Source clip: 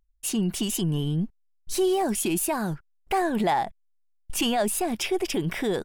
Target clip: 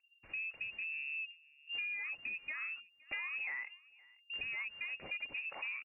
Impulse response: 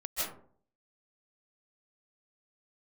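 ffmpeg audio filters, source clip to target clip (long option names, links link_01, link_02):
-filter_complex "[0:a]highshelf=frequency=2100:gain=-7,acompressor=threshold=-36dB:ratio=6,asoftclip=type=tanh:threshold=-29.5dB,asplit=2[link_01][link_02];[link_02]aecho=0:1:517:0.0631[link_03];[link_01][link_03]amix=inputs=2:normalize=0,lowpass=frequency=2400:width_type=q:width=0.5098,lowpass=frequency=2400:width_type=q:width=0.6013,lowpass=frequency=2400:width_type=q:width=0.9,lowpass=frequency=2400:width_type=q:width=2.563,afreqshift=-2800,volume=-2.5dB"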